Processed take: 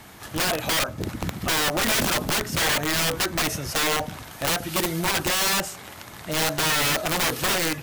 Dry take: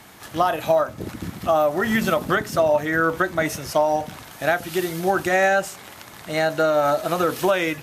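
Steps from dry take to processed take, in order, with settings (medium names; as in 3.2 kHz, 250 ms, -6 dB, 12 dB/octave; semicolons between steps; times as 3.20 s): bass shelf 100 Hz +8 dB; integer overflow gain 17.5 dB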